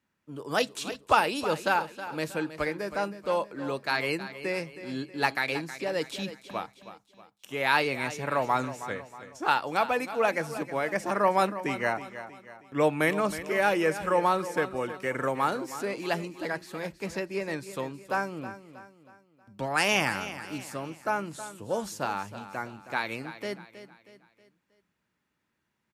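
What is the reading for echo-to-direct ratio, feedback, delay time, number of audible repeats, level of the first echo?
−12.0 dB, 43%, 318 ms, 4, −13.0 dB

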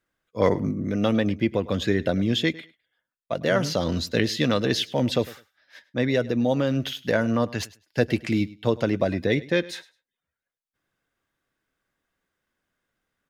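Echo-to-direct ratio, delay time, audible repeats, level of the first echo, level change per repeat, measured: −20.0 dB, 103 ms, 2, −20.0 dB, −15.0 dB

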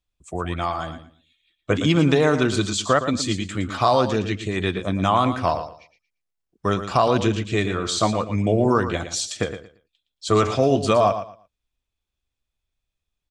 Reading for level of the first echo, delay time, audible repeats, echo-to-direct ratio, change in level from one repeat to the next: −10.5 dB, 115 ms, 2, −10.5 dB, −13.5 dB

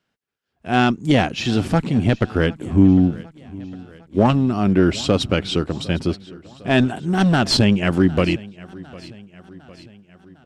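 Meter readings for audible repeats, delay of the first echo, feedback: 3, 755 ms, 56%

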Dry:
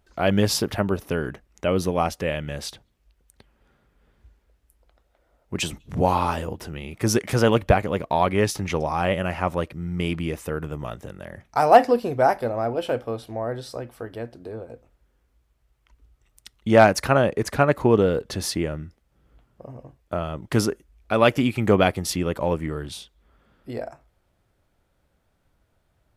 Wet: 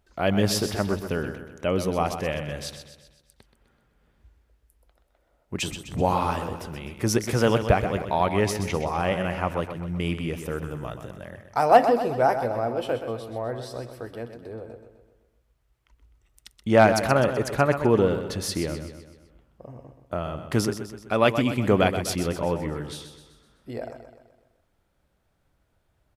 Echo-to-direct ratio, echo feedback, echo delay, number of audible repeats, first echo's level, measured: −8.0 dB, 51%, 127 ms, 5, −9.5 dB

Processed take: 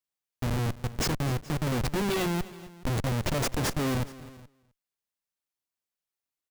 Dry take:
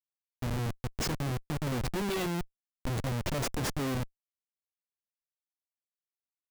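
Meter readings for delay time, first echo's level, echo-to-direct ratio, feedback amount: 258 ms, −18.5 dB, −16.5 dB, repeats not evenly spaced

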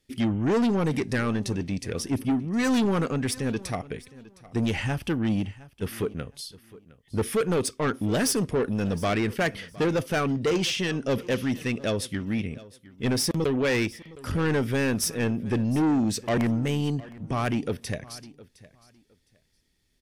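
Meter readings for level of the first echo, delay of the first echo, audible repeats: −20.0 dB, 712 ms, 2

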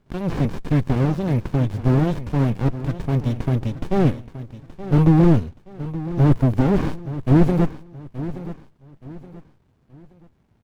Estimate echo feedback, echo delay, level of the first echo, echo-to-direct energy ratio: 35%, 874 ms, −14.0 dB, −13.5 dB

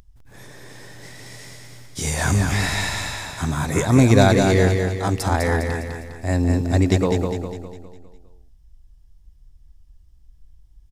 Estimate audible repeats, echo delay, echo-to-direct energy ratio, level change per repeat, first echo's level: 5, 203 ms, −4.0 dB, −6.5 dB, −5.0 dB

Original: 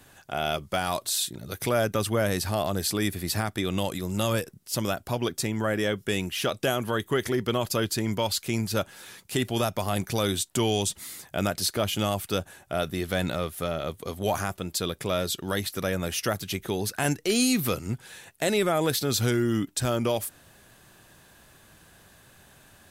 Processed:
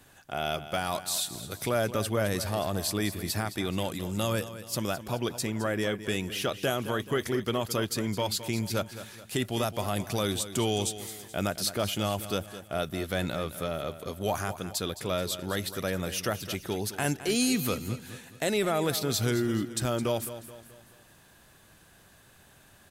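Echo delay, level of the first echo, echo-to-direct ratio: 214 ms, −13.0 dB, −12.0 dB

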